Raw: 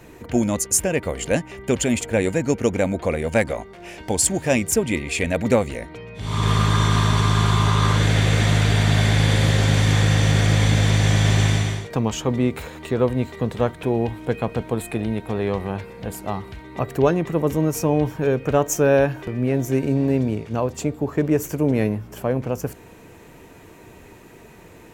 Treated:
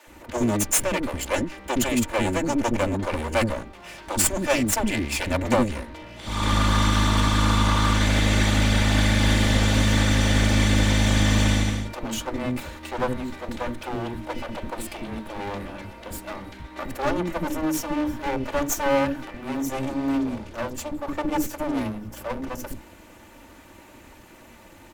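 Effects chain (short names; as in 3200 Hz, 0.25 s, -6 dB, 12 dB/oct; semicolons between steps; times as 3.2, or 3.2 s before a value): minimum comb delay 3.4 ms; bands offset in time highs, lows 70 ms, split 390 Hz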